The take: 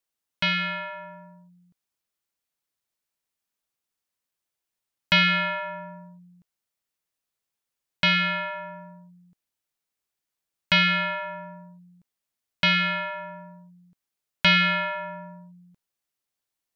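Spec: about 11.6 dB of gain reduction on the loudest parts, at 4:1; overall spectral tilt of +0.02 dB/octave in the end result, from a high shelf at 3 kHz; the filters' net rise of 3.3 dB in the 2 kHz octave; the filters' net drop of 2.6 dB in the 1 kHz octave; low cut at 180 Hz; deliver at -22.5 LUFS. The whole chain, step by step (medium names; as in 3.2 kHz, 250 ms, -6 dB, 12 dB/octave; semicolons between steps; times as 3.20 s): high-pass 180 Hz; peaking EQ 1 kHz -8 dB; peaking EQ 2 kHz +3.5 dB; treble shelf 3 kHz +5.5 dB; compression 4:1, threshold -27 dBFS; trim +6.5 dB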